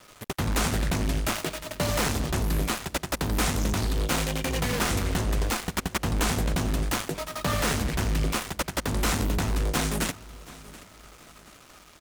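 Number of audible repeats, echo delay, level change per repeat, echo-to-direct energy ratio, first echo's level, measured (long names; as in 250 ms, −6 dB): 2, 728 ms, −9.0 dB, −19.0 dB, −19.5 dB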